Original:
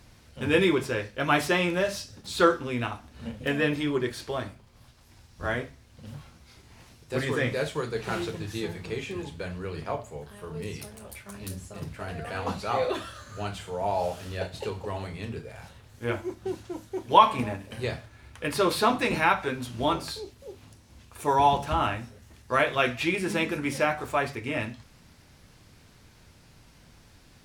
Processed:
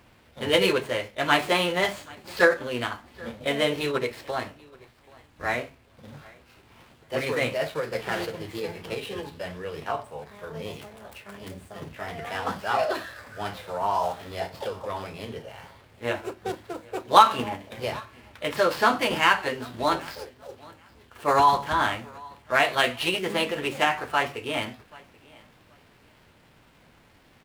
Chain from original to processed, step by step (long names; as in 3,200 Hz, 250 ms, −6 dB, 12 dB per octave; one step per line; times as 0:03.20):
running median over 9 samples
low-shelf EQ 180 Hz −11.5 dB
repeating echo 781 ms, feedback 21%, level −24 dB
formants moved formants +3 semitones
level +3.5 dB